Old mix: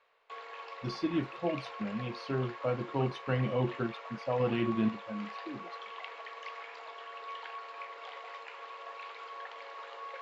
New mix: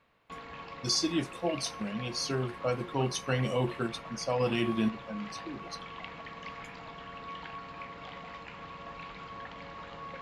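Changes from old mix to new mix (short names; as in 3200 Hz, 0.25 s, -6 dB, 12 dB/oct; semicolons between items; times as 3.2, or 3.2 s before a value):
speech: remove air absorption 420 m; background: remove elliptic high-pass 420 Hz, stop band 80 dB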